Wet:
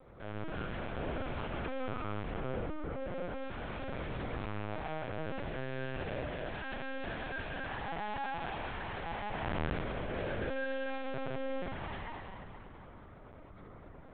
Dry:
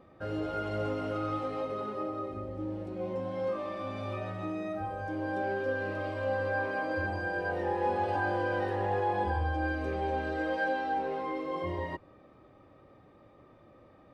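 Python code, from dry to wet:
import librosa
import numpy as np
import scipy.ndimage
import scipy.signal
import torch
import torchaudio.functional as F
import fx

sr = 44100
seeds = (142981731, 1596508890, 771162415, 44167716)

p1 = fx.tube_stage(x, sr, drive_db=45.0, bias=0.6)
p2 = fx.rev_spring(p1, sr, rt60_s=2.7, pass_ms=(38, 59), chirp_ms=45, drr_db=-6.0)
p3 = fx.dynamic_eq(p2, sr, hz=110.0, q=1.1, threshold_db=-52.0, ratio=4.0, max_db=-6)
p4 = p3 + fx.echo_filtered(p3, sr, ms=77, feedback_pct=31, hz=810.0, wet_db=-6.5, dry=0)
p5 = fx.lpc_vocoder(p4, sr, seeds[0], excitation='pitch_kept', order=8)
y = p5 * 10.0 ** (1.5 / 20.0)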